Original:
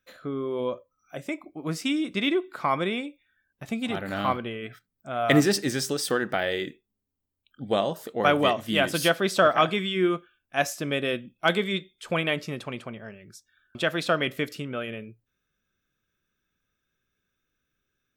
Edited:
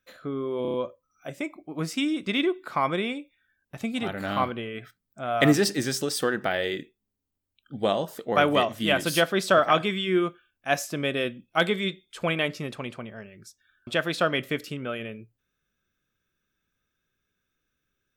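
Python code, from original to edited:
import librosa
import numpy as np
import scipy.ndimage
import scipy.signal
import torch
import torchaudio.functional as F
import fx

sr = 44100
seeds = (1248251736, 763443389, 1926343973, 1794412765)

y = fx.edit(x, sr, fx.stutter(start_s=0.62, slice_s=0.03, count=5), tone=tone)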